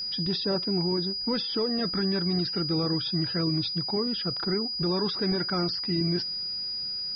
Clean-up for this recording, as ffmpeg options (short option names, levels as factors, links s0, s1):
-af "bandreject=f=4900:w=30"